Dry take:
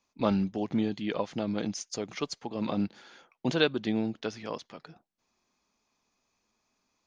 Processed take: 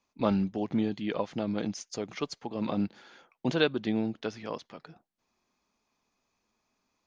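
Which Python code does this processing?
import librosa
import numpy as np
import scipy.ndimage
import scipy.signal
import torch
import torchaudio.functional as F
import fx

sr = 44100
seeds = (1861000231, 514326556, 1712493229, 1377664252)

y = fx.high_shelf(x, sr, hz=4800.0, db=-6.0)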